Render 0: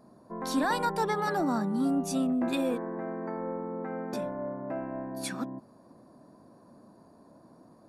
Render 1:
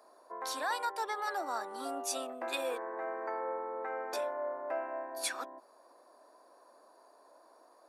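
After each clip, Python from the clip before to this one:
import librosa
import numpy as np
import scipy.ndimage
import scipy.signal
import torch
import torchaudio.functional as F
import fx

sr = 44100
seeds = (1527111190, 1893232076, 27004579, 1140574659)

y = scipy.signal.sosfilt(scipy.signal.bessel(6, 670.0, 'highpass', norm='mag', fs=sr, output='sos'), x)
y = fx.rider(y, sr, range_db=4, speed_s=0.5)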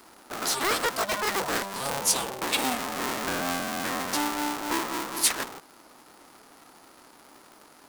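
y = fx.cycle_switch(x, sr, every=2, mode='inverted')
y = fx.high_shelf(y, sr, hz=3200.0, db=8.5)
y = y * 10.0 ** (6.5 / 20.0)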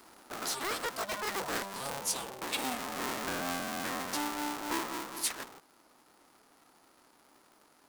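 y = fx.rider(x, sr, range_db=4, speed_s=0.5)
y = y * 10.0 ** (-7.5 / 20.0)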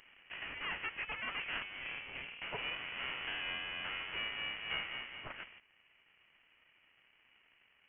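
y = fx.freq_invert(x, sr, carrier_hz=3200)
y = y * 10.0 ** (-4.5 / 20.0)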